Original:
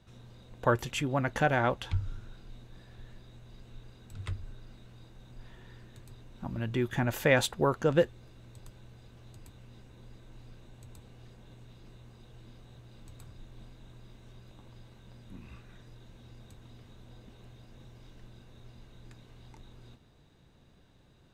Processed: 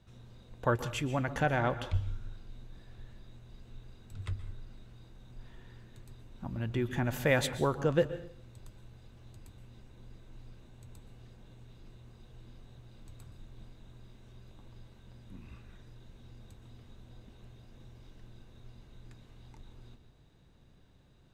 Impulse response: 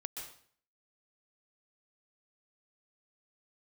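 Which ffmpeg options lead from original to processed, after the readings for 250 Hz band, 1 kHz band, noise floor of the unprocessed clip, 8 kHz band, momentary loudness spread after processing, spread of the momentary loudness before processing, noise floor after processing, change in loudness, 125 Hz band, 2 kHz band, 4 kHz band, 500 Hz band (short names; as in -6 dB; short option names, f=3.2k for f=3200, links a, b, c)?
-2.0 dB, -3.0 dB, -61 dBFS, -3.0 dB, 22 LU, 18 LU, -60 dBFS, -2.5 dB, -0.5 dB, -3.0 dB, -3.0 dB, -3.0 dB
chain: -filter_complex "[0:a]asplit=2[a][b];[1:a]atrim=start_sample=2205,lowshelf=f=210:g=10.5[c];[b][c]afir=irnorm=-1:irlink=0,volume=-5.5dB[d];[a][d]amix=inputs=2:normalize=0,volume=-6dB"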